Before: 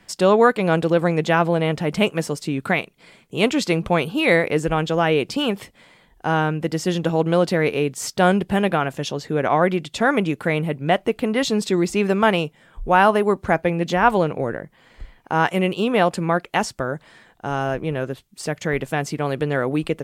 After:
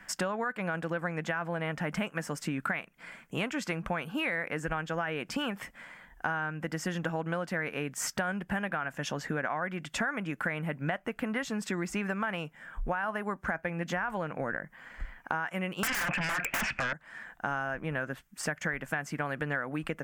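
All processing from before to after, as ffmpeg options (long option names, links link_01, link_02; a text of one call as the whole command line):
ffmpeg -i in.wav -filter_complex "[0:a]asettb=1/sr,asplit=3[link_01][link_02][link_03];[link_01]atrim=end=15.834[link_04];[link_02]atrim=start=15.83:end=16.93,asetpts=PTS-STARTPTS,afade=type=in:duration=0.004:curve=qsin,afade=type=out:start_time=1.096:duration=0.004:curve=qsin,lowpass=frequency=2500:width_type=q:width=11,acontrast=55,aeval=exprs='1*sin(PI/2*7.08*val(0)/1)':channel_layout=same[link_05];[link_03]atrim=start=16.926[link_06];[link_04][link_05]acrossfade=duration=0.004:curve1=hsin:curve2=qsin[link_07];[link_07][link_06]acrossfade=duration=0.004:curve1=qsin:curve2=hsin,equalizer=frequency=100:width_type=o:width=0.67:gain=-12,equalizer=frequency=400:width_type=o:width=0.67:gain=-10,equalizer=frequency=1600:width_type=o:width=0.67:gain=10,equalizer=frequency=4000:width_type=o:width=0.67:gain=-11,equalizer=frequency=10000:width_type=o:width=0.67:gain=-4,alimiter=limit=-8.5dB:level=0:latency=1:release=20,acompressor=threshold=-29dB:ratio=10" out.wav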